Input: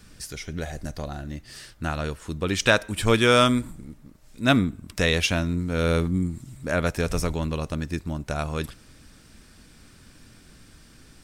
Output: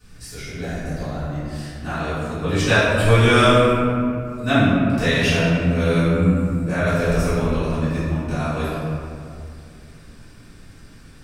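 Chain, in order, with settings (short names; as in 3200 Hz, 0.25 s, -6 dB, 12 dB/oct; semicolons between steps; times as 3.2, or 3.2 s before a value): 4.49–4.98 high shelf 6300 Hz -9 dB; reverb RT60 2.5 s, pre-delay 3 ms, DRR -16 dB; gain -14.5 dB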